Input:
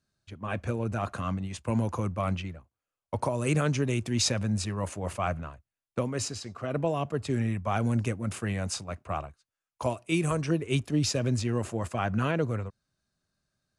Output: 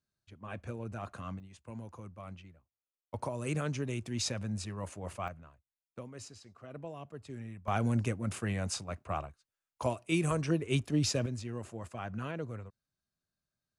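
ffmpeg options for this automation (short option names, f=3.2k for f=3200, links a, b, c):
-af "asetnsamples=n=441:p=0,asendcmd='1.4 volume volume -17dB;3.14 volume volume -8dB;5.28 volume volume -15.5dB;7.68 volume volume -3dB;11.26 volume volume -11dB',volume=-10dB"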